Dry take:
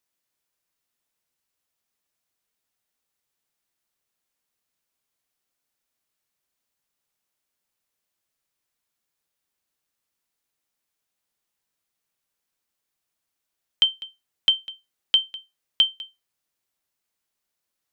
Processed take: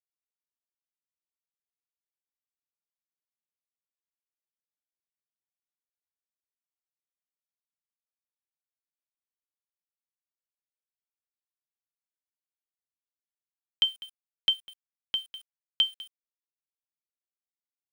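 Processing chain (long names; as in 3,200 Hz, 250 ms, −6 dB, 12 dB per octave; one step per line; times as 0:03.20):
0:14.53–0:15.32: high-shelf EQ 2,400 Hz −9 dB
bit reduction 8 bits
level −5.5 dB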